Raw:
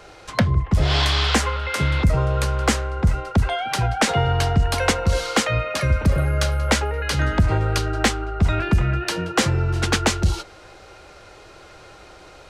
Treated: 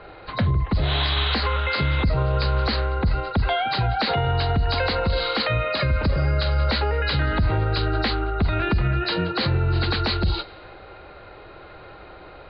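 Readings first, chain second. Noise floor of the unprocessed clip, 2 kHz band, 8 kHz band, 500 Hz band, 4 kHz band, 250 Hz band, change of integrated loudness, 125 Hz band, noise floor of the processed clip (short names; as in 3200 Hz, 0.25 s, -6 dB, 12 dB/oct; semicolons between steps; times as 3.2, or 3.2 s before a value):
-45 dBFS, -2.0 dB, under -40 dB, -1.0 dB, -0.5 dB, -3.0 dB, -1.5 dB, -2.0 dB, -43 dBFS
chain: nonlinear frequency compression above 3700 Hz 4:1; low-pass opened by the level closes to 2100 Hz; limiter -16 dBFS, peak gain reduction 11 dB; gain +2.5 dB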